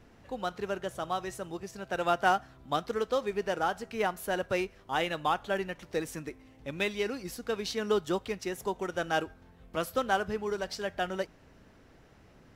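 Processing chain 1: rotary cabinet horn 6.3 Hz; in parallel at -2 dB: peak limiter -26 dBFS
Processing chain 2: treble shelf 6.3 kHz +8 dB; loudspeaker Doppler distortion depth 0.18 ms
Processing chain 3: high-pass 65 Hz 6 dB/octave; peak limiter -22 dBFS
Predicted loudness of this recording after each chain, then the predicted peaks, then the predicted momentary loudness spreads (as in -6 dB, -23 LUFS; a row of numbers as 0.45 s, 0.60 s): -31.5 LUFS, -32.5 LUFS, -35.5 LUFS; -14.5 dBFS, -12.0 dBFS, -22.0 dBFS; 8 LU, 9 LU, 7 LU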